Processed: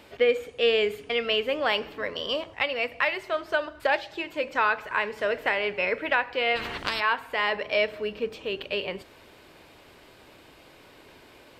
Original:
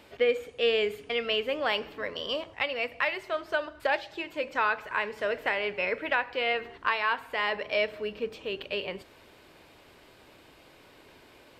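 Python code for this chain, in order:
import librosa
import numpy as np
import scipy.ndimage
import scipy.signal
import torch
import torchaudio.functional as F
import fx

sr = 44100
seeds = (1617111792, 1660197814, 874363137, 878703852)

y = fx.spectral_comp(x, sr, ratio=4.0, at=(6.55, 6.99), fade=0.02)
y = y * librosa.db_to_amplitude(3.0)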